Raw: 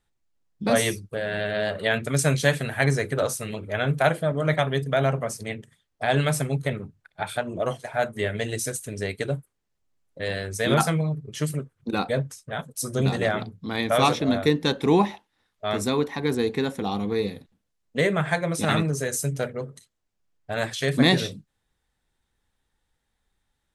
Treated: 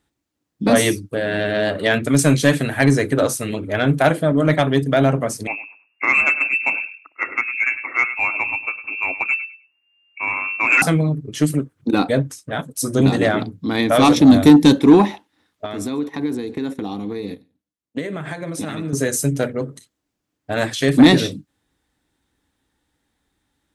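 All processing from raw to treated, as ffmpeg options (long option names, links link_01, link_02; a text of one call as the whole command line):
ffmpeg -i in.wav -filter_complex "[0:a]asettb=1/sr,asplit=3[link_01][link_02][link_03];[link_01]atrim=end=5.474[link_04];[link_02]atrim=start=5.47:end=10.82,asetpts=PTS-STARTPTS,afade=type=in:duration=0.004:curve=qsin,afade=type=out:start_time=5.346:duration=0.004:curve=qsin,asplit=2[link_05][link_06];[link_06]adelay=103,lowpass=frequency=1000:poles=1,volume=-10dB,asplit=2[link_07][link_08];[link_08]adelay=103,lowpass=frequency=1000:poles=1,volume=0.22,asplit=2[link_09][link_10];[link_10]adelay=103,lowpass=frequency=1000:poles=1,volume=0.22[link_11];[link_05][link_07][link_09][link_11]amix=inputs=4:normalize=0,atrim=end_sample=235935,lowpass=frequency=2400:width_type=q:width=0.5098,lowpass=frequency=2400:width_type=q:width=0.6013,lowpass=frequency=2400:width_type=q:width=0.9,lowpass=frequency=2400:width_type=q:width=2.563,afreqshift=-2800[link_12];[link_03]atrim=start=10.816[link_13];[link_04][link_12]acrossfade=duration=0.004:curve1=hsin:curve2=qsin[link_14];[link_14][link_13]acrossfade=duration=0.004:curve1=qsin:curve2=hsin,asettb=1/sr,asplit=3[link_15][link_16][link_17];[link_15]atrim=end=14.164[link_18];[link_16]atrim=start=14.16:end=14.79,asetpts=PTS-STARTPTS,afade=type=in:duration=0.004:curve=qsin,afade=type=out:start_time=0.626:duration=0.004:curve=qsin,bass=frequency=250:gain=8,treble=frequency=4000:gain=11,bandreject=frequency=1400:width=15[link_19];[link_17]atrim=start=14.786[link_20];[link_18][link_19]acrossfade=duration=0.004:curve1=hsin:curve2=qsin[link_21];[link_21][link_20]acrossfade=duration=0.004:curve1=qsin:curve2=hsin,asettb=1/sr,asplit=3[link_22][link_23][link_24];[link_22]atrim=end=15.654[link_25];[link_23]atrim=start=15.65:end=18.93,asetpts=PTS-STARTPTS,afade=type=in:duration=0.004:curve=qsin,afade=type=out:start_time=3.276:duration=0.004:curve=qsin,aecho=1:1:142:0.0794,atrim=end_sample=144648,agate=range=-15dB:threshold=-35dB:ratio=16:release=100:detection=peak,acompressor=threshold=-31dB:ratio=10:attack=3.2:release=140:knee=1:detection=peak[link_26];[link_24]atrim=start=18.926[link_27];[link_25][link_26]acrossfade=duration=0.004:curve1=hsin:curve2=qsin[link_28];[link_28][link_27]acrossfade=duration=0.004:curve1=qsin:curve2=hsin,highpass=55,equalizer=frequency=290:width_type=o:width=0.4:gain=12.5,acontrast=75,volume=-1dB" out.wav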